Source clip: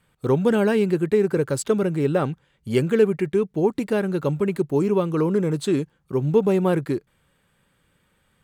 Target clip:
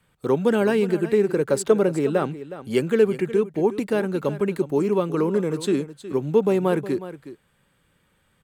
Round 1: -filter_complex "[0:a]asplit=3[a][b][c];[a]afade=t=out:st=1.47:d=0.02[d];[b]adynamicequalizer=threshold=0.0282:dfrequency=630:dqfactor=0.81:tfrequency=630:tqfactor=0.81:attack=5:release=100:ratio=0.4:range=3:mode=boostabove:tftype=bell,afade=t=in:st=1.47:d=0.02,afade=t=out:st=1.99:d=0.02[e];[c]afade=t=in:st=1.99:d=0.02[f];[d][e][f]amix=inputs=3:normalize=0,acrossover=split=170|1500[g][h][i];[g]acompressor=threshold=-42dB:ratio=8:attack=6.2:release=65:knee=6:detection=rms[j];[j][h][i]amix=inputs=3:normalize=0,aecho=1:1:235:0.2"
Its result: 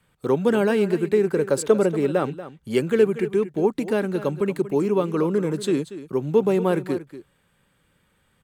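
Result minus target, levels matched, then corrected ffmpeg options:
echo 0.13 s early
-filter_complex "[0:a]asplit=3[a][b][c];[a]afade=t=out:st=1.47:d=0.02[d];[b]adynamicequalizer=threshold=0.0282:dfrequency=630:dqfactor=0.81:tfrequency=630:tqfactor=0.81:attack=5:release=100:ratio=0.4:range=3:mode=boostabove:tftype=bell,afade=t=in:st=1.47:d=0.02,afade=t=out:st=1.99:d=0.02[e];[c]afade=t=in:st=1.99:d=0.02[f];[d][e][f]amix=inputs=3:normalize=0,acrossover=split=170|1500[g][h][i];[g]acompressor=threshold=-42dB:ratio=8:attack=6.2:release=65:knee=6:detection=rms[j];[j][h][i]amix=inputs=3:normalize=0,aecho=1:1:365:0.2"

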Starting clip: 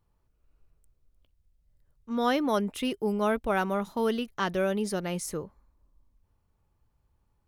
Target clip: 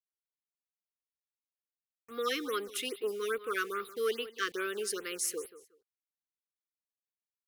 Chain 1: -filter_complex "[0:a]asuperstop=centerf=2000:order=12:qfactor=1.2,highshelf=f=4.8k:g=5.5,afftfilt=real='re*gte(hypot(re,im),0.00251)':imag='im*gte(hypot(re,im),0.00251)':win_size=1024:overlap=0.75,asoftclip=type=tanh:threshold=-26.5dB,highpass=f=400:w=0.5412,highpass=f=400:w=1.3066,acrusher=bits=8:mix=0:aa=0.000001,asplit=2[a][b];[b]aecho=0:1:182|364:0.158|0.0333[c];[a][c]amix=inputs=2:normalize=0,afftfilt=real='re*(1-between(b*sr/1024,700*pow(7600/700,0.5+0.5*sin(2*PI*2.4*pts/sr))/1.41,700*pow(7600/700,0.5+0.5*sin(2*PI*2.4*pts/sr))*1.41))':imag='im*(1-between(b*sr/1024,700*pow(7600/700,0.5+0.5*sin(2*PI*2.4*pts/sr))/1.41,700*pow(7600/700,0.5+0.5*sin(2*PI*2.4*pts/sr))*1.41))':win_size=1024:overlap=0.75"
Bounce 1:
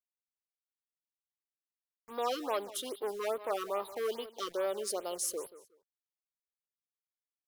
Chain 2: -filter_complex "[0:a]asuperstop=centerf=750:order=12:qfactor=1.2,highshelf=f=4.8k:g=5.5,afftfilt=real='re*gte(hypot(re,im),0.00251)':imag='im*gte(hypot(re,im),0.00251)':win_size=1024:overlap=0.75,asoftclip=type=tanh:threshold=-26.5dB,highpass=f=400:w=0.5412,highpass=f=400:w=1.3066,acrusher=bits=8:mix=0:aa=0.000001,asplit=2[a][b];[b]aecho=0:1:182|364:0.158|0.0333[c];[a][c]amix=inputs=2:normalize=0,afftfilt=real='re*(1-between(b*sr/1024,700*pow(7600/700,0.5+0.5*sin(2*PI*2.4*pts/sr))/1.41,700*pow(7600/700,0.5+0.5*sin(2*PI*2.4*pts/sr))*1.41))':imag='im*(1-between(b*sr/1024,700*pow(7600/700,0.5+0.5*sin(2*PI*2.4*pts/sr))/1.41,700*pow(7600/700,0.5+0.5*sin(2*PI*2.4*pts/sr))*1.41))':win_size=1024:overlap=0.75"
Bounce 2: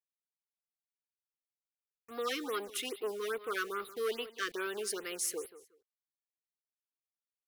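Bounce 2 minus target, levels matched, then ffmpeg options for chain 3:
soft clip: distortion +10 dB
-filter_complex "[0:a]asuperstop=centerf=750:order=12:qfactor=1.2,highshelf=f=4.8k:g=5.5,afftfilt=real='re*gte(hypot(re,im),0.00251)':imag='im*gte(hypot(re,im),0.00251)':win_size=1024:overlap=0.75,asoftclip=type=tanh:threshold=-19dB,highpass=f=400:w=0.5412,highpass=f=400:w=1.3066,acrusher=bits=8:mix=0:aa=0.000001,asplit=2[a][b];[b]aecho=0:1:182|364:0.158|0.0333[c];[a][c]amix=inputs=2:normalize=0,afftfilt=real='re*(1-between(b*sr/1024,700*pow(7600/700,0.5+0.5*sin(2*PI*2.4*pts/sr))/1.41,700*pow(7600/700,0.5+0.5*sin(2*PI*2.4*pts/sr))*1.41))':imag='im*(1-between(b*sr/1024,700*pow(7600/700,0.5+0.5*sin(2*PI*2.4*pts/sr))/1.41,700*pow(7600/700,0.5+0.5*sin(2*PI*2.4*pts/sr))*1.41))':win_size=1024:overlap=0.75"

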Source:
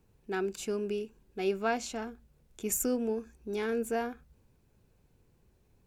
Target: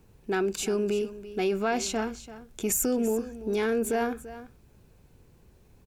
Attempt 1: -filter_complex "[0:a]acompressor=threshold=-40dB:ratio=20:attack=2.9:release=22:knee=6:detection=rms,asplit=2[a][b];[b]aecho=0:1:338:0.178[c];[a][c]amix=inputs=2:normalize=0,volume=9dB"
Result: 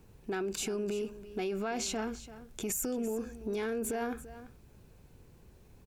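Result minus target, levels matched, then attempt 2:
compressor: peak gain reduction +8.5 dB
-filter_complex "[0:a]acompressor=threshold=-31dB:ratio=20:attack=2.9:release=22:knee=6:detection=rms,asplit=2[a][b];[b]aecho=0:1:338:0.178[c];[a][c]amix=inputs=2:normalize=0,volume=9dB"

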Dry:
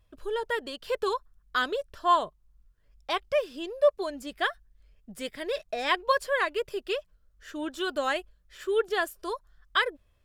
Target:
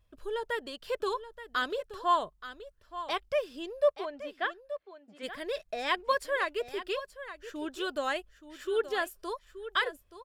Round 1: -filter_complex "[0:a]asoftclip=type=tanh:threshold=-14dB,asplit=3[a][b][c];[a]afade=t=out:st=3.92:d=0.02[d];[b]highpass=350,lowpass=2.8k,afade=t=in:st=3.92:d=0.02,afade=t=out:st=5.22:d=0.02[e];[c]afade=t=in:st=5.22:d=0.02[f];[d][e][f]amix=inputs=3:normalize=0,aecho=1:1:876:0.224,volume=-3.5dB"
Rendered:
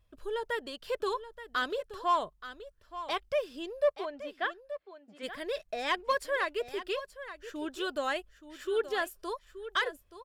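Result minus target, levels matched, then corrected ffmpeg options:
soft clip: distortion +22 dB
-filter_complex "[0:a]asoftclip=type=tanh:threshold=-2dB,asplit=3[a][b][c];[a]afade=t=out:st=3.92:d=0.02[d];[b]highpass=350,lowpass=2.8k,afade=t=in:st=3.92:d=0.02,afade=t=out:st=5.22:d=0.02[e];[c]afade=t=in:st=5.22:d=0.02[f];[d][e][f]amix=inputs=3:normalize=0,aecho=1:1:876:0.224,volume=-3.5dB"

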